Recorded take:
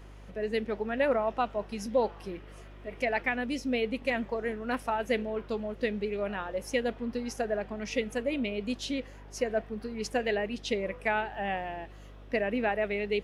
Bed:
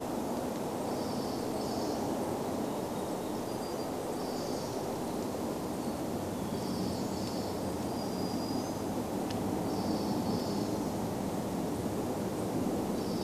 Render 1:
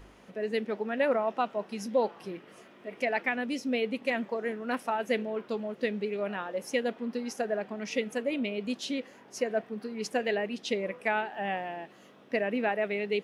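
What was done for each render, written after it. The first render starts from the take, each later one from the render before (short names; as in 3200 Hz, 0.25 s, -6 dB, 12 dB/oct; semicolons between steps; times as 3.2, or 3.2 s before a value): de-hum 50 Hz, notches 3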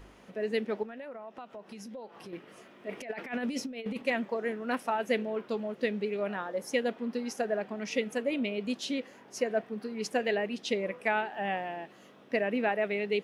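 0.83–2.33 compressor 5:1, threshold -42 dBFS; 2.89–4.02 negative-ratio compressor -34 dBFS, ratio -0.5; 6.33–6.73 bell 2700 Hz -9 dB 0.34 oct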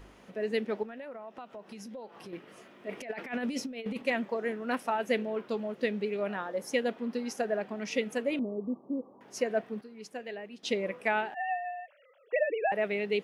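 8.39–9.21 rippled Chebyshev low-pass 1200 Hz, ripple 3 dB; 9.81–10.63 gain -11 dB; 11.34–12.72 sine-wave speech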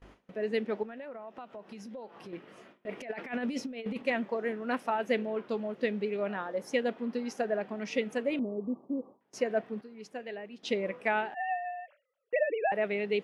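gate with hold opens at -43 dBFS; high shelf 6700 Hz -11 dB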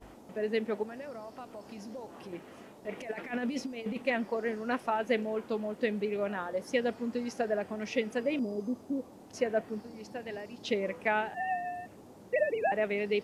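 add bed -18.5 dB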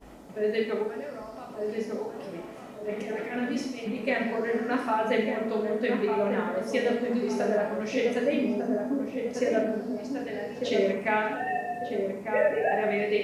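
darkening echo 1.198 s, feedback 45%, low-pass 1100 Hz, level -4 dB; non-linear reverb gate 0.27 s falling, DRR -1.5 dB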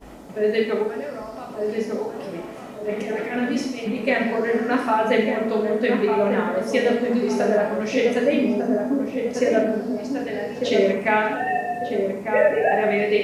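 gain +6.5 dB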